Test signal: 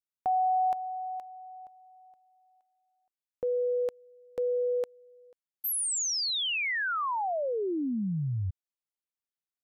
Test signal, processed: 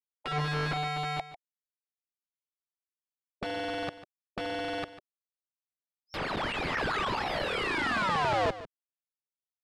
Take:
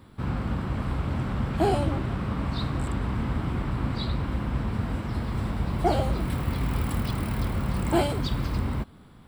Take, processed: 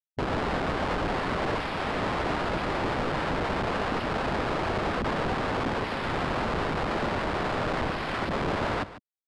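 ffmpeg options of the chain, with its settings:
ffmpeg -i in.wav -filter_complex "[0:a]afftfilt=real='re*gte(hypot(re,im),0.0794)':imag='im*gte(hypot(re,im),0.0794)':win_size=1024:overlap=0.75,highshelf=frequency=4100:gain=-2,alimiter=limit=-22dB:level=0:latency=1:release=115,dynaudnorm=framelen=100:gausssize=5:maxgain=10dB,aresample=11025,aeval=exprs='(mod(22.4*val(0)+1,2)-1)/22.4':channel_layout=same,aresample=44100,adynamicsmooth=sensitivity=1.5:basefreq=1100,asplit=2[link_01][link_02];[link_02]aecho=0:1:147:0.178[link_03];[link_01][link_03]amix=inputs=2:normalize=0,volume=5.5dB" out.wav

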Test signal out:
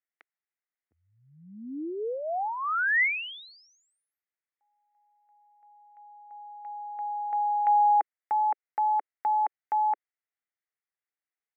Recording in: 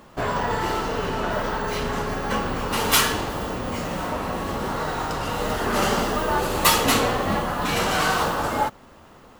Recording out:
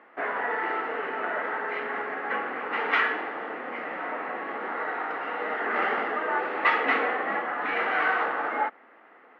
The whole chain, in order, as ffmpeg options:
ffmpeg -i in.wav -af "highpass=frequency=350:width=0.5412,highpass=frequency=350:width=1.3066,equalizer=frequency=380:width_type=q:width=4:gain=-6,equalizer=frequency=570:width_type=q:width=4:gain=-8,equalizer=frequency=1000:width_type=q:width=4:gain=-8,equalizer=frequency=2000:width_type=q:width=4:gain=7,lowpass=frequency=2100:width=0.5412,lowpass=frequency=2100:width=1.3066" out.wav

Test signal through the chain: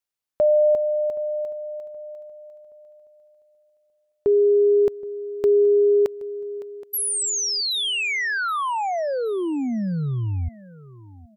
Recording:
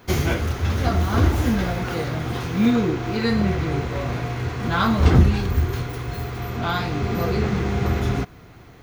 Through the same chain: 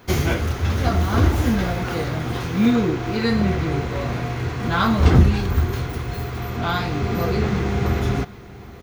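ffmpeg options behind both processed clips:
ffmpeg -i in.wav -af "aecho=1:1:773|1546|2319:0.1|0.035|0.0123,volume=1dB" out.wav

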